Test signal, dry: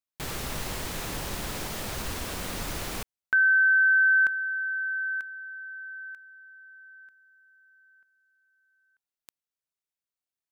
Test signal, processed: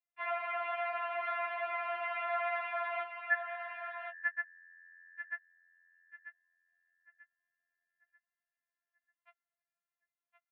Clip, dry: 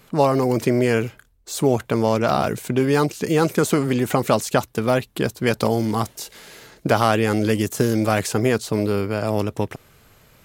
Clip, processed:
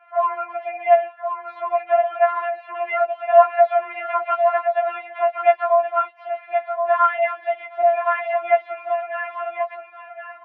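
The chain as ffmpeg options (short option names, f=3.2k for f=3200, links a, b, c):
-filter_complex "[0:a]asplit=2[a][b];[b]alimiter=limit=-14dB:level=0:latency=1,volume=-1dB[c];[a][c]amix=inputs=2:normalize=0,asplit=2[d][e];[e]adelay=13,volume=-11dB[f];[d][f]amix=inputs=2:normalize=0,aecho=1:1:1071:0.473,highpass=f=380:t=q:w=0.5412,highpass=f=380:t=q:w=1.307,lowpass=f=2.2k:t=q:w=0.5176,lowpass=f=2.2k:t=q:w=0.7071,lowpass=f=2.2k:t=q:w=1.932,afreqshift=220,afftfilt=real='re*4*eq(mod(b,16),0)':imag='im*4*eq(mod(b,16),0)':win_size=2048:overlap=0.75,volume=-1dB"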